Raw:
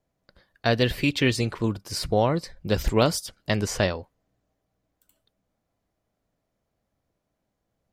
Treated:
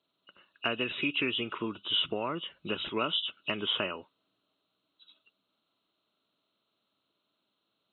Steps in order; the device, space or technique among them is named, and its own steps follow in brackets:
hearing aid with frequency lowering (hearing-aid frequency compression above 2,500 Hz 4 to 1; downward compressor 3 to 1, threshold −27 dBFS, peak gain reduction 9.5 dB; loudspeaker in its box 330–6,600 Hz, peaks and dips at 510 Hz −9 dB, 750 Hz −10 dB, 1,300 Hz +7 dB, 1,800 Hz −10 dB, 5,400 Hz +7 dB)
level +2.5 dB

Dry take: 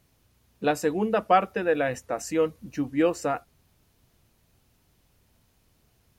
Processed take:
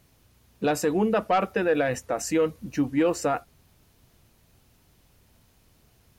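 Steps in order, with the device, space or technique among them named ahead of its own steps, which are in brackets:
soft clipper into limiter (soft clipping −13 dBFS, distortion −19 dB; brickwall limiter −19.5 dBFS, peak gain reduction 6 dB)
level +4.5 dB

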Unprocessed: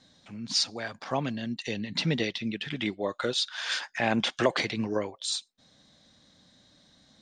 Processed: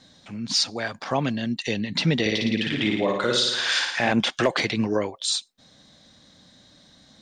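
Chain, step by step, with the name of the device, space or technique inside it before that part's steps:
0:02.20–0:04.12: flutter between parallel walls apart 9.6 metres, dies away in 0.84 s
clipper into limiter (hard clipping −15 dBFS, distortion −27 dB; brickwall limiter −18.5 dBFS, peak gain reduction 3.5 dB)
level +6.5 dB

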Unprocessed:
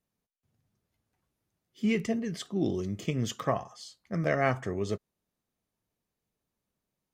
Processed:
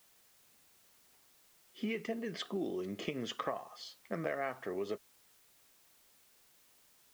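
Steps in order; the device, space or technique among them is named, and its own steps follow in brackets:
baby monitor (band-pass filter 330–3,300 Hz; downward compressor, threshold −40 dBFS, peak gain reduction 17 dB; white noise bed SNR 24 dB)
level +5.5 dB

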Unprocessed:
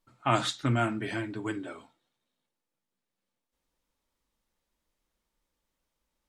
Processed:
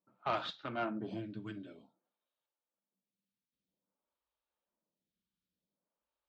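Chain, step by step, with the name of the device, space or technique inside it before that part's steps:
vibe pedal into a guitar amplifier (phaser with staggered stages 0.52 Hz; tube saturation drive 23 dB, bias 0.65; loudspeaker in its box 84–4,500 Hz, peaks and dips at 190 Hz +9 dB, 610 Hz +4 dB, 2,000 Hz −8 dB)
level −3 dB

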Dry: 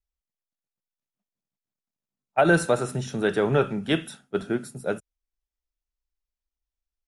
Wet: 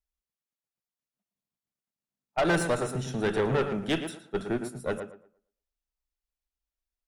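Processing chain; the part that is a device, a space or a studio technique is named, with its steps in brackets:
rockabilly slapback (tube saturation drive 20 dB, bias 0.55; tape delay 114 ms, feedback 27%, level −6.5 dB, low-pass 2,200 Hz)

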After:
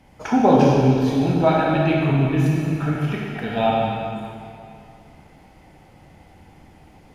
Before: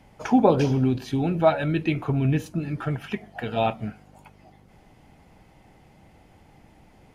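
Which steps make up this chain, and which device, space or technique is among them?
stairwell (convolution reverb RT60 2.5 s, pre-delay 20 ms, DRR −4 dB)

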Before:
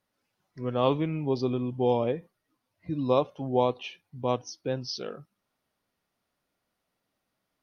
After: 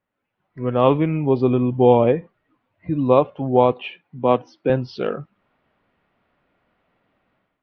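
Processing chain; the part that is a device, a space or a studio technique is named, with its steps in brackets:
0:03.72–0:04.70: high-pass filter 140 Hz 24 dB per octave
action camera in a waterproof case (low-pass filter 2,800 Hz 24 dB per octave; automatic gain control gain up to 14.5 dB; AAC 96 kbit/s 44,100 Hz)

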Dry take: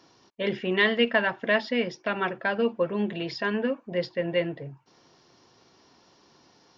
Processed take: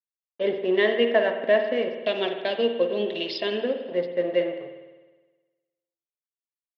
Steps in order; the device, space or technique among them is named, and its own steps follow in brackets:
0:02.03–0:03.61: high shelf with overshoot 2,400 Hz +13.5 dB, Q 1.5
blown loudspeaker (dead-zone distortion −38.5 dBFS; loudspeaker in its box 240–3,700 Hz, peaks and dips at 380 Hz +7 dB, 610 Hz +9 dB, 990 Hz −4 dB, 1,400 Hz −9 dB, 2,400 Hz −5 dB)
spring reverb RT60 1.3 s, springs 51 ms, chirp 45 ms, DRR 6 dB

